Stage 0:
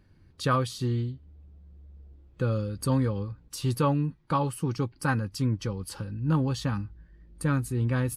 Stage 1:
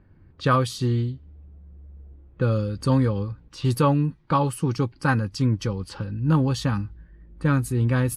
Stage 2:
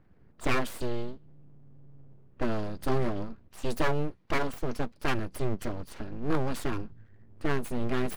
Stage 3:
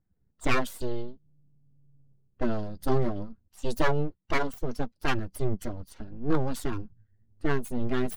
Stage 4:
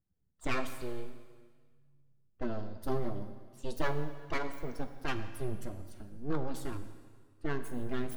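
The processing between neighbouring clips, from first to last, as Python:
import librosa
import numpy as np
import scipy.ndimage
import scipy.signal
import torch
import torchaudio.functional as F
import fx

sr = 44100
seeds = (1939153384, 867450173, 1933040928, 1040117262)

y1 = fx.env_lowpass(x, sr, base_hz=1700.0, full_db=-25.5)
y1 = y1 * librosa.db_to_amplitude(5.0)
y2 = np.abs(y1)
y2 = y2 * librosa.db_to_amplitude(-4.5)
y3 = fx.bin_expand(y2, sr, power=1.5)
y3 = y3 * librosa.db_to_amplitude(4.0)
y4 = fx.rev_plate(y3, sr, seeds[0], rt60_s=1.6, hf_ratio=1.0, predelay_ms=0, drr_db=8.0)
y4 = y4 * librosa.db_to_amplitude(-8.0)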